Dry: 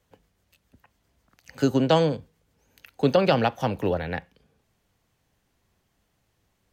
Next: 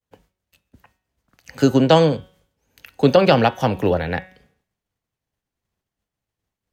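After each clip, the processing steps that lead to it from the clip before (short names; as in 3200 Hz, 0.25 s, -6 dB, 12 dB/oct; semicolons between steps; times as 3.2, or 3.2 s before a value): expander -58 dBFS; de-hum 186.1 Hz, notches 20; gain +6.5 dB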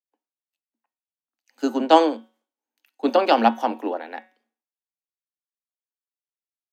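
rippled Chebyshev high-pass 220 Hz, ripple 9 dB; three-band expander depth 70%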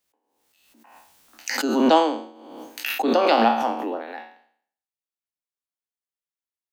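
spectral trails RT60 0.58 s; backwards sustainer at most 39 dB/s; gain -4 dB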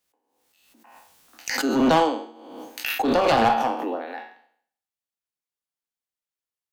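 one-sided clip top -18 dBFS; reverb RT60 0.50 s, pre-delay 3 ms, DRR 11 dB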